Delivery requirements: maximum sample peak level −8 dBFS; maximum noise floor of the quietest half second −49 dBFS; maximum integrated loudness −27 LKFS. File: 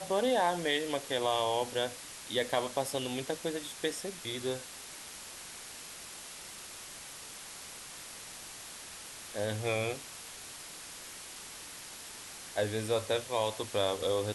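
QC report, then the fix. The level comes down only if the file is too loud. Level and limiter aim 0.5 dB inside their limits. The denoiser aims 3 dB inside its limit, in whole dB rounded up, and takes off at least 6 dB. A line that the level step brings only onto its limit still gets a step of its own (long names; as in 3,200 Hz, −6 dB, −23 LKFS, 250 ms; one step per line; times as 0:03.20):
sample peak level −16.5 dBFS: in spec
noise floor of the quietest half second −47 dBFS: out of spec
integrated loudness −35.5 LKFS: in spec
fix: broadband denoise 6 dB, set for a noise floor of −47 dBFS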